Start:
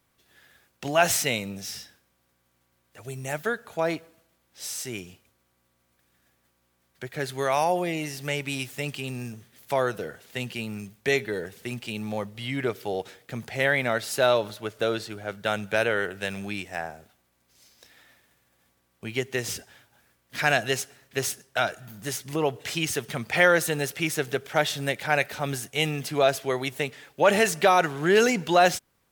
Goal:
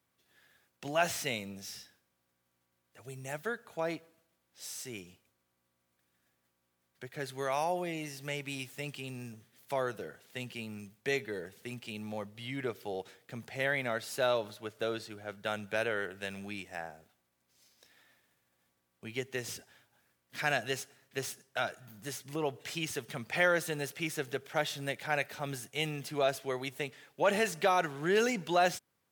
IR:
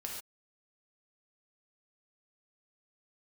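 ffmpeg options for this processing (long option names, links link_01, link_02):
-filter_complex "[0:a]highpass=87,acrossover=split=4900[link_01][link_02];[link_02]asoftclip=type=hard:threshold=-31dB[link_03];[link_01][link_03]amix=inputs=2:normalize=0,volume=-8.5dB"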